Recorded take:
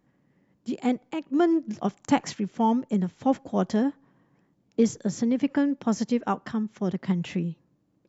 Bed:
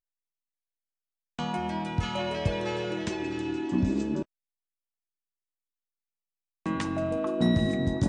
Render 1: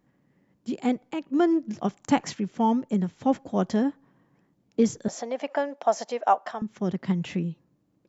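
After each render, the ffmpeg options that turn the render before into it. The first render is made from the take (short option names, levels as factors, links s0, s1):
-filter_complex "[0:a]asettb=1/sr,asplit=3[s0][s1][s2];[s0]atrim=end=5.084[s3];[s1]atrim=start=5.08:end=6.62,asetpts=PTS-STARTPTS,afade=t=in:d=0.004:c=qsin,afade=t=out:st=1.536:d=0.004:c=qsin,highpass=f=670:t=q:w=4.9[s4];[s2]atrim=start=6.616[s5];[s3][s4]acrossfade=d=0.004:c1=hsin:c2=qsin[s6];[s6][s5]acrossfade=d=0.004:c1=qsin:c2=hsin"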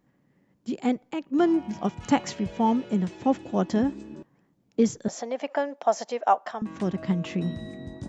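-filter_complex "[1:a]volume=0.251[s0];[0:a][s0]amix=inputs=2:normalize=0"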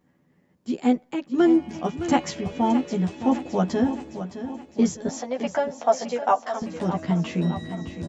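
-filter_complex "[0:a]asplit=2[s0][s1];[s1]adelay=12,volume=0.794[s2];[s0][s2]amix=inputs=2:normalize=0,aecho=1:1:614|1228|1842|2456|3070|3684:0.266|0.146|0.0805|0.0443|0.0243|0.0134"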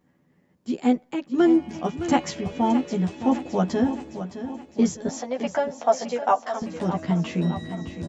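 -af anull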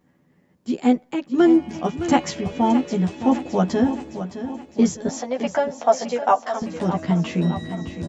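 -af "volume=1.41"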